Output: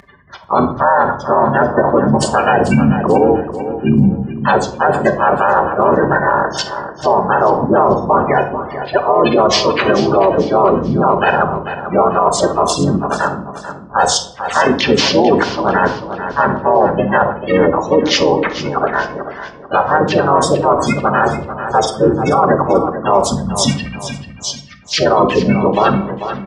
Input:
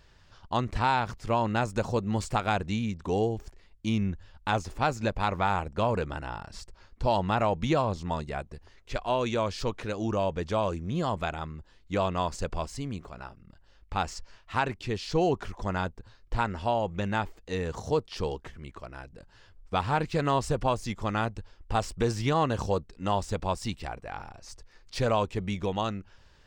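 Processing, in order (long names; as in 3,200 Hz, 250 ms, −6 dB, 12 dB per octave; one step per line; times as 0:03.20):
gate on every frequency bin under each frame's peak −15 dB strong
meter weighting curve A
time-frequency box erased 0:23.22–0:24.94, 280–1,800 Hz
reversed playback
downward compressor 4 to 1, threshold −37 dBFS, peak gain reduction 13.5 dB
reversed playback
pitch-shifted copies added −7 semitones −4 dB, +3 semitones −5 dB
on a send: repeating echo 440 ms, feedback 35%, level −12.5 dB
on the sum: rectangular room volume 880 cubic metres, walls furnished, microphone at 1.2 metres
boost into a limiter +27.5 dB
level −1 dB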